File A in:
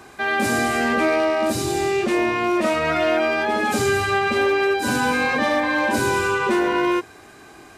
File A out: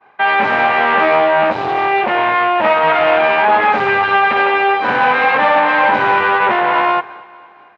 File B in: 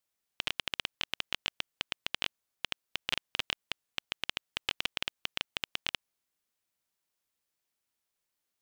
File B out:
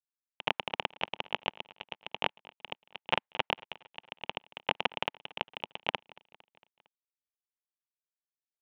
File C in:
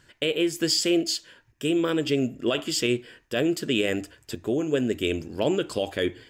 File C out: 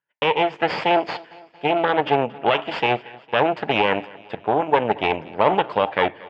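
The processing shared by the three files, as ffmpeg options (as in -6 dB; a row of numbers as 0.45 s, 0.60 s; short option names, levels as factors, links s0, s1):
-filter_complex "[0:a]agate=range=0.0224:threshold=0.0158:ratio=3:detection=peak,aeval=exprs='0.335*(cos(1*acos(clip(val(0)/0.335,-1,1)))-cos(1*PI/2))+0.075*(cos(6*acos(clip(val(0)/0.335,-1,1)))-cos(6*PI/2))':c=same,highpass=230,equalizer=f=250:t=q:w=4:g=-10,equalizer=f=350:t=q:w=4:g=-10,equalizer=f=880:t=q:w=4:g=8,lowpass=f=2700:w=0.5412,lowpass=f=2700:w=1.3066,asplit=2[s0][s1];[s1]aecho=0:1:228|456|684|912:0.075|0.0427|0.0244|0.0139[s2];[s0][s2]amix=inputs=2:normalize=0,volume=2.11"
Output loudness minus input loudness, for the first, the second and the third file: +7.0 LU, +0.5 LU, +4.5 LU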